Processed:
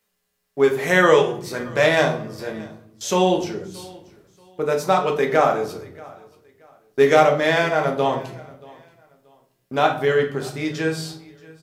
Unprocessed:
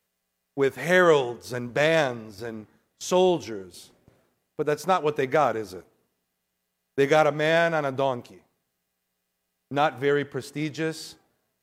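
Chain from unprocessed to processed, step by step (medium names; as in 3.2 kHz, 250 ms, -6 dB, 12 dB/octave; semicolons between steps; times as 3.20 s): peaking EQ 130 Hz -3.5 dB 2.9 oct; feedback delay 630 ms, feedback 28%, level -23 dB; reverberation RT60 0.60 s, pre-delay 5 ms, DRR 1.5 dB; trim +3 dB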